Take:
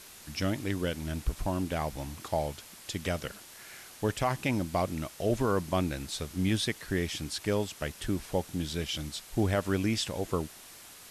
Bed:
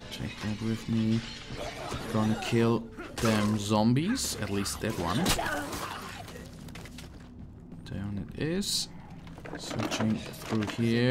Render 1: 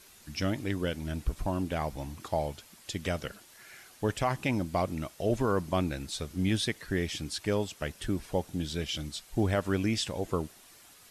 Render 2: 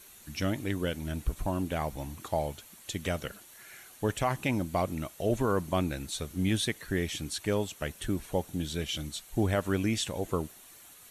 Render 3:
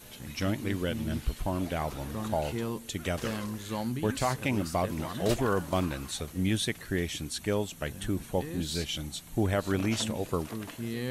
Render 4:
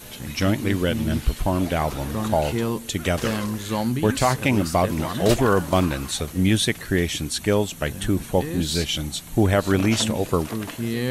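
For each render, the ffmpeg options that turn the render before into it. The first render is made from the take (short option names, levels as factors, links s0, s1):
-af "afftdn=nr=7:nf=-50"
-af "highshelf=f=11000:g=10,bandreject=f=5000:w=5.7"
-filter_complex "[1:a]volume=0.376[s0];[0:a][s0]amix=inputs=2:normalize=0"
-af "volume=2.82"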